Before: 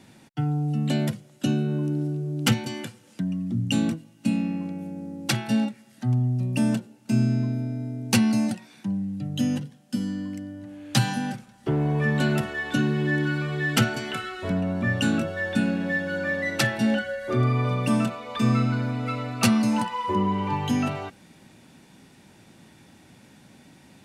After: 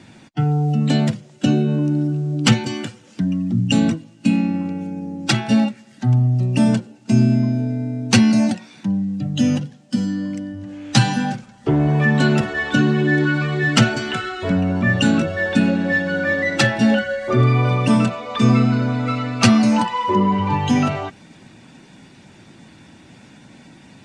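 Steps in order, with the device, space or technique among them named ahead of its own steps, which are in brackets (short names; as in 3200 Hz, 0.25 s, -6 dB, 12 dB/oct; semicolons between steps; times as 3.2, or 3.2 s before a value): clip after many re-uploads (LPF 8000 Hz 24 dB/oct; bin magnitudes rounded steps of 15 dB); gain +7.5 dB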